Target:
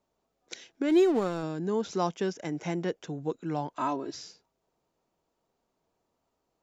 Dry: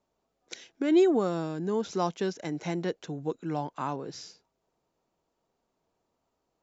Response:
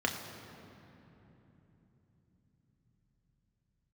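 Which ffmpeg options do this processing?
-filter_complex "[0:a]asplit=3[a][b][c];[a]afade=t=out:st=0.88:d=0.02[d];[b]aeval=exprs='sgn(val(0))*max(abs(val(0))-0.01,0)':c=same,afade=t=in:st=0.88:d=0.02,afade=t=out:st=1.42:d=0.02[e];[c]afade=t=in:st=1.42:d=0.02[f];[d][e][f]amix=inputs=3:normalize=0,asettb=1/sr,asplit=3[g][h][i];[g]atrim=end=2.074[j];[h]atrim=start=2.07:end=3.06,asetpts=PTS-STARTPTS,afade=t=in:d=0.004:c=qsin,afade=t=out:st=0.986:d=0.004:c=qsin,bandreject=f=4.1k:w=6.5[k];[i]atrim=start=3.056[l];[j][k]acrossfade=d=0.004:c1=hsin:c2=qsin[m];[m][l]acrossfade=d=0.004:c1=qsin:c2=hsin,asettb=1/sr,asplit=3[n][o][p];[n]atrim=end=3.764[q];[o]atrim=start=3.76:end=4.16,asetpts=PTS-STARTPTS,afade=t=in:d=0.004:c=qsin,afade=t=out:st=0.396:d=0.004:c=qsin,aecho=1:1:3.1:0.86,atrim=end_sample=17640[r];[p]atrim=start=4.156[s];[q][r]acrossfade=d=0.004:c1=hsin:c2=qsin[t];[t][s]acrossfade=d=0.004:c1=qsin:c2=hsin"

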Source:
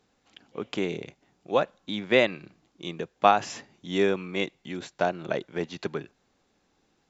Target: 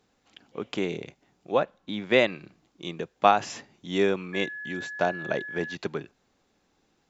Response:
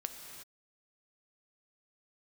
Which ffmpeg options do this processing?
-filter_complex "[0:a]asettb=1/sr,asplit=3[a][b][c];[a]atrim=end=1.524[d];[b]atrim=start=1.52:end=2,asetpts=PTS-STARTPTS,afade=t=in:d=0.004:c=qsin,afade=t=out:st=0.476:d=0.004:c=qsin,lowpass=f=3.1k:p=1[e];[c]atrim=start=1.996[f];[d][e]acrossfade=d=0.004:c1=hsin:c2=qsin[g];[g][f]acrossfade=d=0.004:c1=qsin:c2=hsin,asettb=1/sr,asplit=3[h][i][j];[h]atrim=end=4.334[k];[i]atrim=start=4.33:end=5.75,asetpts=PTS-STARTPTS,afade=t=in:d=0.004:c=qsin,afade=t=out:st=1.416:d=0.004:c=qsin,aeval=exprs='val(0)+0.0178*sin(2*PI*1700*n/s)':c=same[l];[j]atrim=start=5.746[m];[k][l]acrossfade=d=0.004:c1=hsin:c2=qsin[n];[n][m]acrossfade=d=0.004:c1=qsin:c2=hsin"

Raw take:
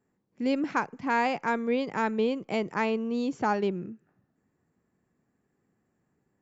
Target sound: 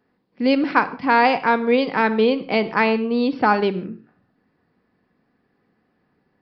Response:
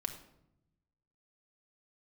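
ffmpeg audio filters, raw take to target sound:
-filter_complex "[0:a]lowshelf=f=300:g=-7,asplit=2[a][b];[1:a]atrim=start_sample=2205,afade=t=out:st=0.23:d=0.01,atrim=end_sample=10584,highshelf=f=6k:g=11.5[c];[b][c]afir=irnorm=-1:irlink=0,volume=-0.5dB[d];[a][d]amix=inputs=2:normalize=0,aresample=11025,aresample=44100,volume=5.5dB"

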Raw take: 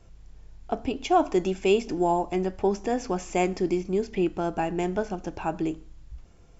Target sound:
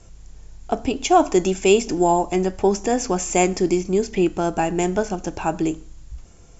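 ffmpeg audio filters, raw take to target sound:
-af "lowpass=f=7.3k:t=q:w=3.5,volume=6dB"

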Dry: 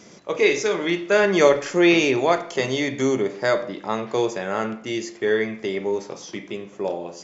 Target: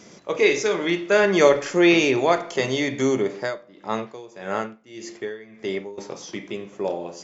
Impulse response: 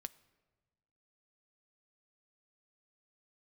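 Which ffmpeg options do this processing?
-filter_complex "[0:a]asettb=1/sr,asplit=3[a][b][c];[a]atrim=end=3.374[d];[b]atrim=start=3.37:end=5.98,asetpts=PTS-STARTPTS,afade=t=in:d=0.004:c=qsin,afade=t=out:st=2.606:d=0.004:c=qsin,aeval=exprs='val(0)*pow(10,-20*(0.5-0.5*cos(2*PI*1.7*n/s))/20)':c=same[e];[c]atrim=start=5.976[f];[d][e]acrossfade=d=0.004:c1=hsin:c2=qsin[g];[g][f]acrossfade=d=0.004:c1=qsin:c2=hsin"

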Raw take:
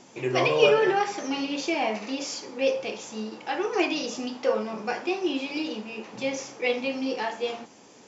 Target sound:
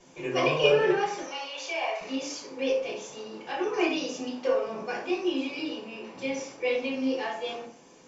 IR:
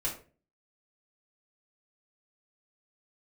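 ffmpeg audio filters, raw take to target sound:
-filter_complex "[0:a]asettb=1/sr,asplit=3[a][b][c];[a]atrim=end=1.224[d];[b]atrim=start=1.22:end=2.01,asetpts=PTS-STARTPTS,afade=t=in:d=0.004:c=qsin,afade=t=out:st=0.786:d=0.004:c=qsin,highpass=f=550:w=0.5412,highpass=f=550:w=1.3066[e];[c]atrim=start=2.006[f];[d][e]acrossfade=d=0.004:c1=hsin:c2=qsin[g];[g][f]acrossfade=d=0.004:c1=qsin:c2=hsin,asettb=1/sr,asplit=3[h][i][j];[h]atrim=end=5.554[k];[i]atrim=start=5.55:end=6.72,asetpts=PTS-STARTPTS,afade=t=in:d=0.004:c=qsin,afade=t=out:st=1.166:d=0.004:c=qsin,bandreject=f=6.5k:w=11[l];[j]atrim=start=6.716[m];[k][l]acrossfade=d=0.004:c1=hsin:c2=qsin[n];[n][m]acrossfade=d=0.004:c1=qsin:c2=hsin[o];[1:a]atrim=start_sample=2205[p];[o][p]afir=irnorm=-1:irlink=0,volume=-6.5dB"

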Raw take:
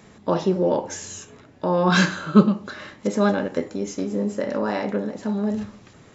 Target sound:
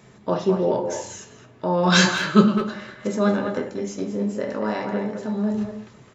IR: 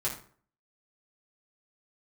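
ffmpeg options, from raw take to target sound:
-filter_complex "[0:a]asettb=1/sr,asplit=3[a][b][c];[a]atrim=end=1.834[d];[b]atrim=start=1.83:end=2.57,asetpts=PTS-STARTPTS,afade=t=in:d=0.004:c=qsin,afade=t=out:st=0.736:d=0.004:c=qsin,highshelf=f=2.3k:g=11[e];[c]atrim=start=2.566[f];[d][e]acrossfade=d=0.004:c1=hsin:c2=qsin[g];[g][f]acrossfade=d=0.004:c1=qsin:c2=hsin,asplit=2[h][i];[i]adelay=210,highpass=300,lowpass=3.4k,asoftclip=type=hard:threshold=-10dB,volume=-6dB[j];[h][j]amix=inputs=2:normalize=0,asplit=2[k][l];[1:a]atrim=start_sample=2205[m];[l][m]afir=irnorm=-1:irlink=0,volume=-7.5dB[n];[k][n]amix=inputs=2:normalize=0,volume=-5dB"

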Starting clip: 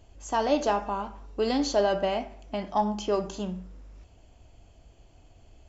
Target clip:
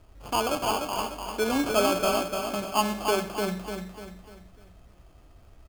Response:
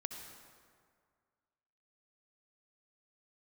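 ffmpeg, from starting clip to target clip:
-filter_complex "[0:a]asettb=1/sr,asplit=3[a][b][c];[a]atrim=end=0.484[d];[b]atrim=start=0.48:end=0.98,asetpts=PTS-STARTPTS,afade=t=in:d=0.004:c=qsin,afade=t=out:st=0.496:d=0.004:c=qsin,tiltshelf=f=1.3k:g=-9[e];[c]atrim=start=0.976[f];[d][e]acrossfade=d=0.004:c1=hsin:c2=qsin[g];[g][f]acrossfade=d=0.004:c1=qsin:c2=hsin,acrusher=samples=23:mix=1:aa=0.000001,aecho=1:1:297|594|891|1188|1485:0.562|0.242|0.104|0.0447|0.0192"

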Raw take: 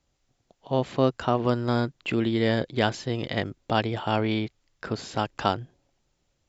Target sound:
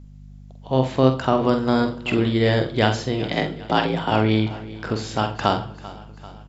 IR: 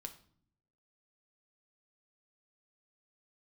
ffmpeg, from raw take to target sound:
-filter_complex "[0:a]asplit=3[a][b][c];[a]afade=t=out:st=3.23:d=0.02[d];[b]afreqshift=55,afade=t=in:st=3.23:d=0.02,afade=t=out:st=4.1:d=0.02[e];[c]afade=t=in:st=4.1:d=0.02[f];[d][e][f]amix=inputs=3:normalize=0,aeval=exprs='val(0)+0.00562*(sin(2*PI*50*n/s)+sin(2*PI*2*50*n/s)/2+sin(2*PI*3*50*n/s)/3+sin(2*PI*4*50*n/s)/4+sin(2*PI*5*50*n/s)/5)':c=same,aecho=1:1:391|782|1173|1564|1955:0.126|0.073|0.0424|0.0246|0.0142,asplit=2[g][h];[1:a]atrim=start_sample=2205,adelay=46[i];[h][i]afir=irnorm=-1:irlink=0,volume=-1.5dB[j];[g][j]amix=inputs=2:normalize=0,volume=4dB"

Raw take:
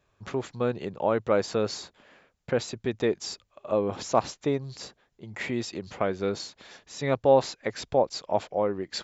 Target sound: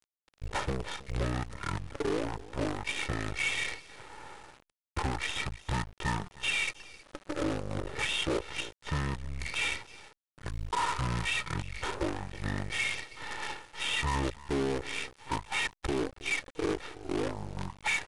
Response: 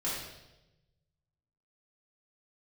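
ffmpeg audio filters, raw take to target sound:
-af "tiltshelf=f=1.5k:g=-5,acompressor=threshold=-37dB:ratio=4,asetrate=22050,aresample=44100,equalizer=f=4.9k:w=1.3:g=-5.5,aecho=1:1:2.2:1,aecho=1:1:319:0.112,acrusher=bits=7:dc=4:mix=0:aa=0.000001,volume=34.5dB,asoftclip=hard,volume=-34.5dB,volume=9dB" -ar 22050 -c:a adpcm_ima_wav

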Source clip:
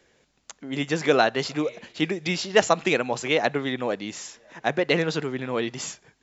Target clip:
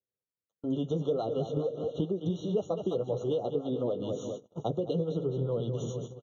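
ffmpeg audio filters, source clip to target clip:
-filter_complex "[0:a]flanger=delay=9.9:depth=1.6:regen=-25:speed=0.37:shape=sinusoidal,asettb=1/sr,asplit=3[a][b][c];[a]atrim=end=4.594[d];[b]atrim=start=4.59:end=5.6,asetpts=PTS-STARTPTS,afade=t=in:d=0.004:c=qsin,afade=t=out:st=1.006:d=0.004:c=qsin,acrossover=split=330|3000[e][f][g];[f]acompressor=threshold=-30dB:ratio=6[h];[e][h][g]amix=inputs=3:normalize=0[i];[c]atrim=start=5.596[j];[d][i]acrossfade=d=0.004:c1=hsin:c2=qsin[k];[k][j]acrossfade=d=0.004:c1=qsin:c2=hsin,equalizer=f=125:t=o:w=1:g=10,equalizer=f=250:t=o:w=1:g=-4,equalizer=f=500:t=o:w=1:g=9,equalizer=f=1k:t=o:w=1:g=-4,equalizer=f=2k:t=o:w=1:g=6,equalizer=f=4k:t=o:w=1:g=5,asplit=2[l][m];[m]aecho=0:1:208|416|624|832|1040:0.266|0.128|0.0613|0.0294|0.0141[n];[l][n]amix=inputs=2:normalize=0,acrossover=split=690[o][p];[o]aeval=exprs='val(0)*(1-0.5/2+0.5/2*cos(2*PI*7*n/s))':c=same[q];[p]aeval=exprs='val(0)*(1-0.5/2-0.5/2*cos(2*PI*7*n/s))':c=same[r];[q][r]amix=inputs=2:normalize=0,asplit=2[s][t];[t]asoftclip=type=tanh:threshold=-22.5dB,volume=-9dB[u];[s][u]amix=inputs=2:normalize=0,highpass=f=58:p=1,tiltshelf=f=870:g=10,agate=range=-43dB:threshold=-37dB:ratio=16:detection=peak,acompressor=threshold=-28dB:ratio=6,afftfilt=real='re*eq(mod(floor(b*sr/1024/1400),2),0)':imag='im*eq(mod(floor(b*sr/1024/1400),2),0)':win_size=1024:overlap=0.75"

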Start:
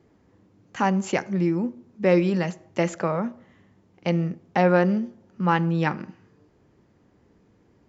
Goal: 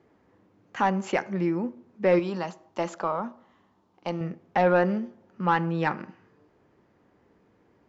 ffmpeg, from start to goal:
-filter_complex "[0:a]asplit=2[a][b];[b]highpass=f=720:p=1,volume=11dB,asoftclip=type=tanh:threshold=-6.5dB[c];[a][c]amix=inputs=2:normalize=0,lowpass=f=1.7k:p=1,volume=-6dB,asettb=1/sr,asplit=3[d][e][f];[d]atrim=end=2.194[g];[e]atrim=start=2.19:end=4.21,asetpts=PTS-STARTPTS,afade=t=in:d=0.004:c=qsin,afade=t=out:st=2.016:d=0.004:c=qsin,equalizer=f=125:t=o:w=1:g=-10,equalizer=f=500:t=o:w=1:g=-6,equalizer=f=1k:t=o:w=1:g=5,equalizer=f=2k:t=o:w=1:g=-10,equalizer=f=4k:t=o:w=1:g=3[h];[f]atrim=start=4.206[i];[g][h]acrossfade=d=0.004:c1=hsin:c2=qsin[j];[j][i]acrossfade=d=0.004:c1=qsin:c2=hsin,volume=-2.5dB"

